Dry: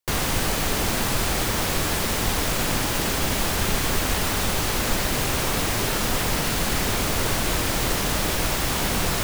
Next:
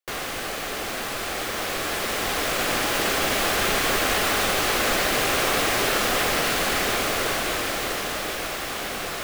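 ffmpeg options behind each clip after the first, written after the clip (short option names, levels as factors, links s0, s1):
-af "dynaudnorm=f=270:g=17:m=3.76,bass=f=250:g=-15,treble=f=4000:g=-6,bandreject=f=930:w=7,volume=0.75"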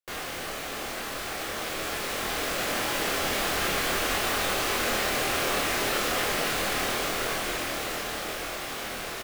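-filter_complex "[0:a]asplit=2[s0][s1];[s1]adelay=25,volume=0.75[s2];[s0][s2]amix=inputs=2:normalize=0,volume=0.473"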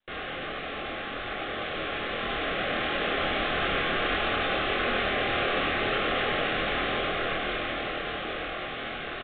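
-af "asuperstop=centerf=940:order=20:qfactor=5,aecho=1:1:96:0.501" -ar 8000 -c:a pcm_mulaw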